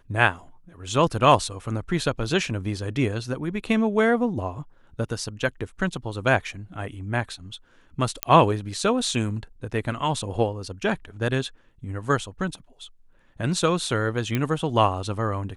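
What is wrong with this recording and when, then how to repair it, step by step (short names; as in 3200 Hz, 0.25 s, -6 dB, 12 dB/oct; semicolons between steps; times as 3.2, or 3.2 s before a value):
8.23 pop -4 dBFS
14.35 pop -11 dBFS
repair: de-click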